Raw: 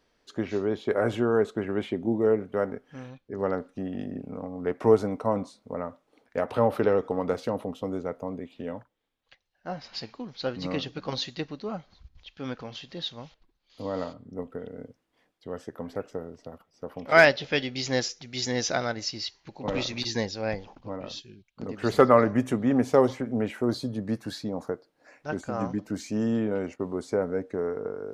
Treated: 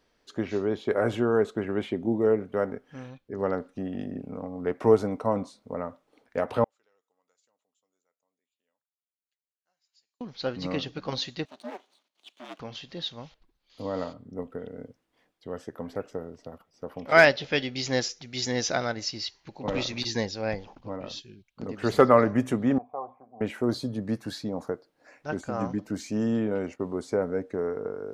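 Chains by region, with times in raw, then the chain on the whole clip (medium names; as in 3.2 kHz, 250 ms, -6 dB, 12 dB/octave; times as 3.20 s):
6.64–10.21 s: band-pass filter 7.1 kHz, Q 17 + distance through air 120 m
11.45–12.60 s: comb filter that takes the minimum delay 0.3 ms + steep high-pass 390 Hz 72 dB/octave + ring modulator 180 Hz
22.78–23.41 s: cascade formant filter a + hum notches 50/100/150/200/250 Hz
whole clip: none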